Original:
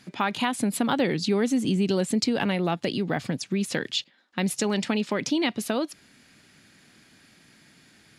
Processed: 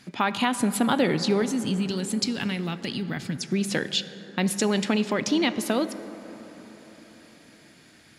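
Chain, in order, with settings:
0:01.42–0:03.42: parametric band 620 Hz −13.5 dB 2.1 octaves
dense smooth reverb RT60 4.7 s, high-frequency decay 0.3×, DRR 11.5 dB
level +1.5 dB

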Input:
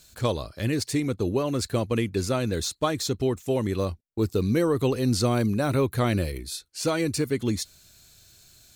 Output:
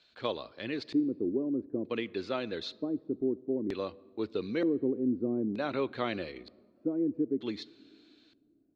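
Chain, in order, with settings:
three-way crossover with the lows and the highs turned down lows −21 dB, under 220 Hz, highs −19 dB, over 3,600 Hz
auto-filter low-pass square 0.54 Hz 310–4,000 Hz
on a send: convolution reverb RT60 2.1 s, pre-delay 3 ms, DRR 22 dB
on the sum: level −6.5 dB

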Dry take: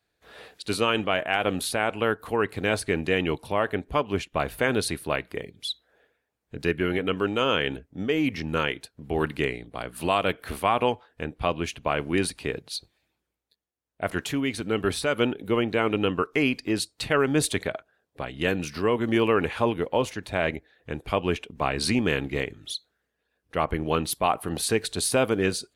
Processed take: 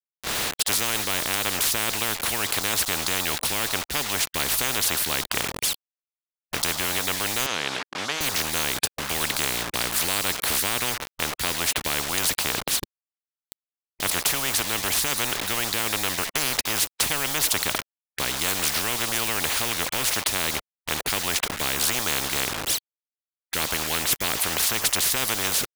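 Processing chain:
bit reduction 8 bits
0:07.46–0:08.21: band-pass filter 620–5,100 Hz
every bin compressed towards the loudest bin 10 to 1
level +4 dB

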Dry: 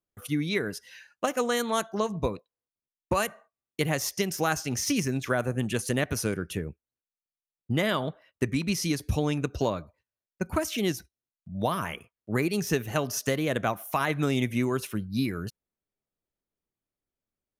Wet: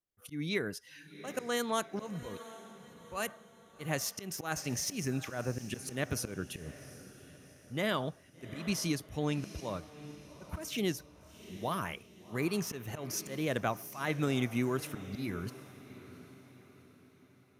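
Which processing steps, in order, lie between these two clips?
volume swells 148 ms
feedback delay with all-pass diffusion 761 ms, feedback 45%, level −15 dB
level −5 dB

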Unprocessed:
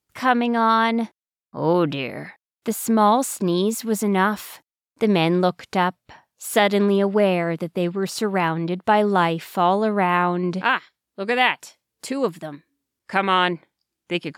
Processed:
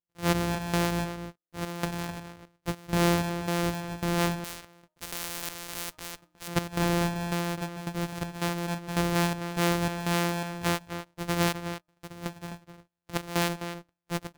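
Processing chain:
samples sorted by size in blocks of 256 samples
hum removal 309.7 Hz, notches 4
gate pattern ".xx.xx.xx" 82 BPM −12 dB
slap from a distant wall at 44 metres, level −9 dB
0:04.44–0:06.48: every bin compressed towards the loudest bin 4 to 1
level −7.5 dB

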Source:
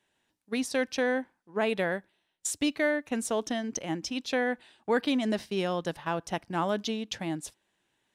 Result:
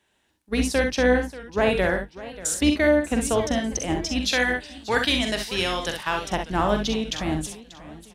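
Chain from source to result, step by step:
sub-octave generator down 2 octaves, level −4 dB
0:04.24–0:06.24: tilt shelving filter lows −8 dB, about 1,100 Hz
ambience of single reflections 44 ms −7.5 dB, 64 ms −7 dB
feedback echo with a swinging delay time 591 ms, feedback 38%, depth 171 cents, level −17 dB
level +5.5 dB

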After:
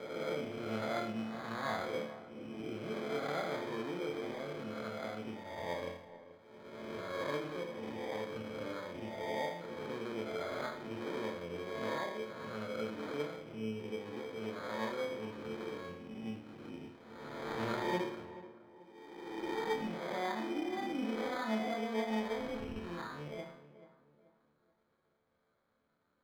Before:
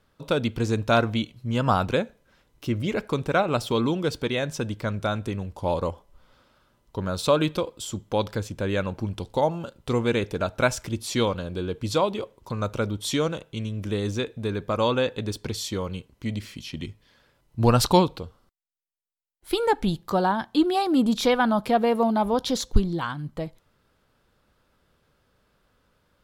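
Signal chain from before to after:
peak hold with a rise ahead of every peak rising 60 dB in 1.34 s
high-shelf EQ 3,500 Hz −10 dB
in parallel at +2.5 dB: downward compressor, threshold −30 dBFS, peak gain reduction 20 dB
on the sum: resonators tuned to a chord D2 minor, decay 0.63 s
decimation without filtering 16×
tube saturation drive 13 dB, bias 0.25
three-way crossover with the lows and the highs turned down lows −13 dB, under 150 Hz, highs −16 dB, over 4,300 Hz
on a send: tape delay 433 ms, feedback 41%, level −13.5 dB, low-pass 1,400 Hz
on the sum: level −3.5 dB

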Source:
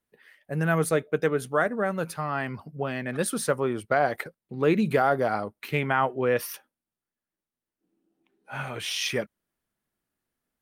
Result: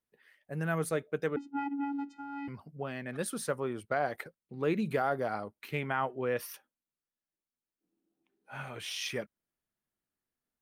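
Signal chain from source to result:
0:01.36–0:02.48: channel vocoder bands 8, square 281 Hz
level −8 dB

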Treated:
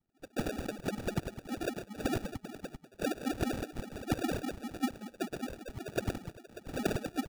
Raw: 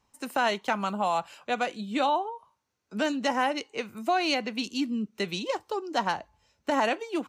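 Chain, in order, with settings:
on a send: multi-tap delay 159/537/591 ms −4.5/−13.5/−15.5 dB
on the sum: LFO wah 5.1 Hz 230–2,500 Hz, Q 15
decimation without filtering 42×
low-shelf EQ 350 Hz +2.5 dB
level +4.5 dB

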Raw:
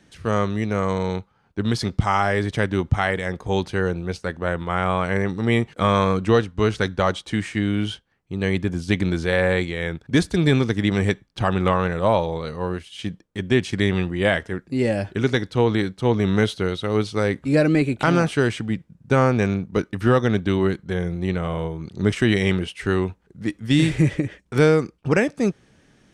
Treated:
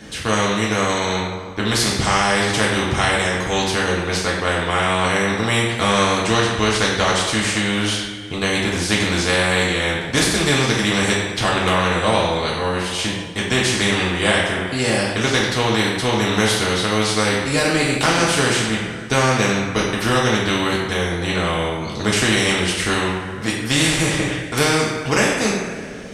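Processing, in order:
coupled-rooms reverb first 0.56 s, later 1.9 s, from −18 dB, DRR −4.5 dB
every bin compressed towards the loudest bin 2 to 1
level −1.5 dB

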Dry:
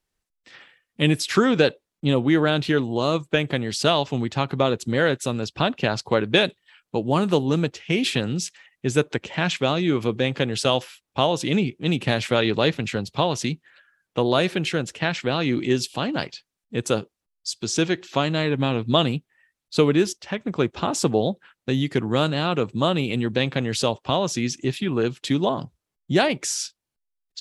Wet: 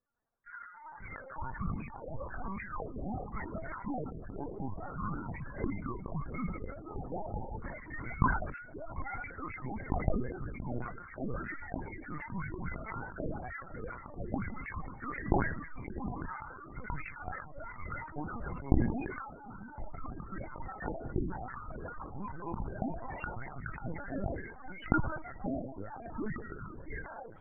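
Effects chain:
reversed playback
downward compressor 10 to 1, threshold −33 dBFS, peak gain reduction 20.5 dB
reversed playback
echo machine with several playback heads 174 ms, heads first and third, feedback 46%, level −14.5 dB
wave folding −26.5 dBFS
on a send at −23.5 dB: convolution reverb RT60 3.9 s, pre-delay 103 ms
on the sum: delay with pitch and tempo change per echo 86 ms, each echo −6 semitones, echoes 3
single-sideband voice off tune −400 Hz 460–2,600 Hz
spectral peaks only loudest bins 16
linear-prediction vocoder at 8 kHz pitch kept
level that may fall only so fast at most 62 dB per second
level +3 dB

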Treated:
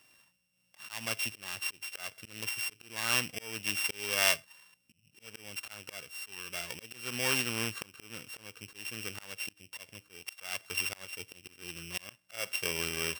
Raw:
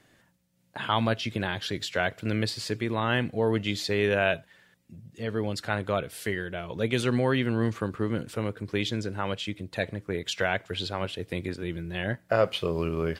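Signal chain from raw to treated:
samples sorted by size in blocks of 16 samples
volume swells 364 ms
tilt shelving filter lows −8.5 dB, about 900 Hz
level −5.5 dB

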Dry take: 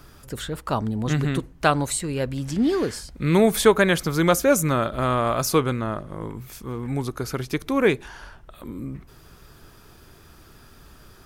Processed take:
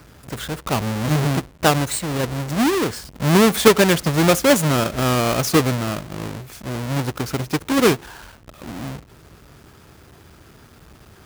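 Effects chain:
each half-wave held at its own peak
high-pass filter 63 Hz
level −1 dB

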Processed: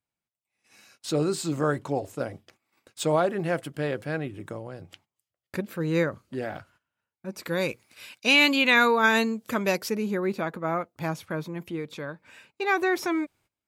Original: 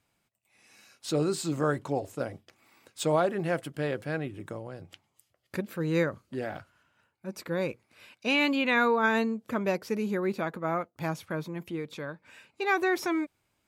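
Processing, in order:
noise gate −59 dBFS, range −18 dB
0:07.43–0:09.90: high-shelf EQ 2,500 Hz +12 dB
level +2 dB

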